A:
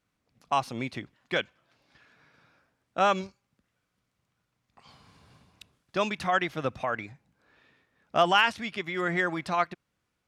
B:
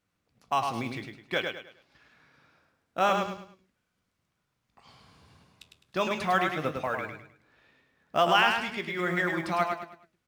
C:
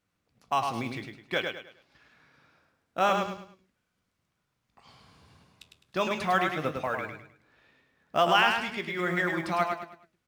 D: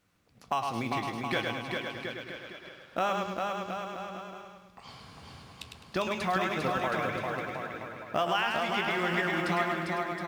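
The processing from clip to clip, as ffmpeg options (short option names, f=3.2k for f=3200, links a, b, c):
-af "flanger=delay=9.7:depth=8.8:regen=68:speed=0.73:shape=triangular,aecho=1:1:104|208|312|416:0.562|0.186|0.0612|0.0202,acrusher=bits=8:mode=log:mix=0:aa=0.000001,volume=3dB"
-af anull
-filter_complex "[0:a]acompressor=threshold=-40dB:ratio=2.5,asplit=2[a][b];[b]aecho=0:1:400|720|976|1181|1345:0.631|0.398|0.251|0.158|0.1[c];[a][c]amix=inputs=2:normalize=0,volume=7.5dB"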